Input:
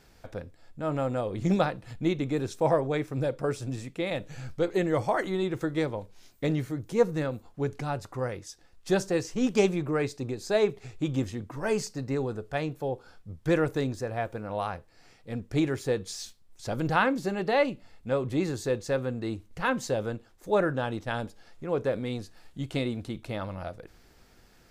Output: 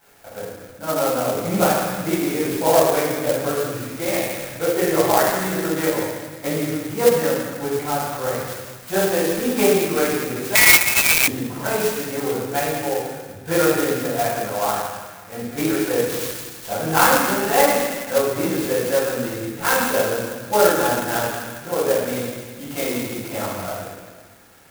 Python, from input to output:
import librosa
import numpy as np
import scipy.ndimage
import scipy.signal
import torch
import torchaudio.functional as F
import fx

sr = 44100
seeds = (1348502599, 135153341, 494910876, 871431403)

y = fx.vibrato(x, sr, rate_hz=7.2, depth_cents=6.9)
y = fx.echo_wet_highpass(y, sr, ms=163, feedback_pct=52, hz=1400.0, wet_db=-6.0)
y = fx.room_shoebox(y, sr, seeds[0], volume_m3=710.0, walls='mixed', distance_m=7.7)
y = fx.freq_invert(y, sr, carrier_hz=2600, at=(10.55, 11.28))
y = fx.highpass(y, sr, hz=680.0, slope=6)
y = fx.clock_jitter(y, sr, seeds[1], jitter_ms=0.069)
y = y * 10.0 ** (-2.0 / 20.0)